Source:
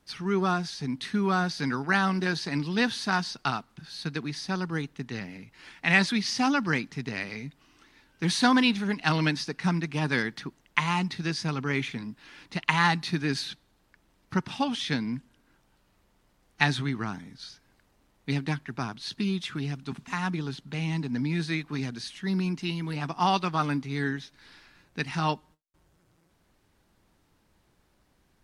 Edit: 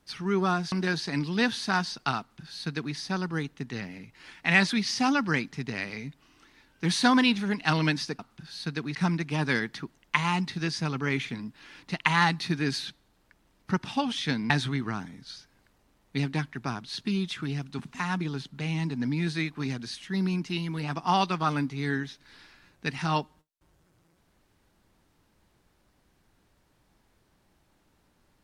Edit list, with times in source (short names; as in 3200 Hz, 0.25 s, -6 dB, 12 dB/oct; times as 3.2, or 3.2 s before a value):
0.72–2.11 cut
3.58–4.34 copy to 9.58
15.13–16.63 cut